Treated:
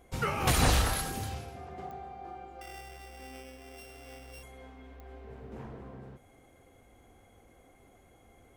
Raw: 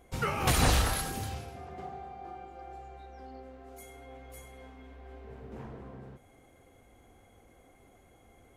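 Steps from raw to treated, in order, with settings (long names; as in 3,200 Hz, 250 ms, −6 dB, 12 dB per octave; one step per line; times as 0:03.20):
0:02.61–0:04.43: samples sorted by size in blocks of 16 samples
digital clicks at 0:01.91/0:05.00, −34 dBFS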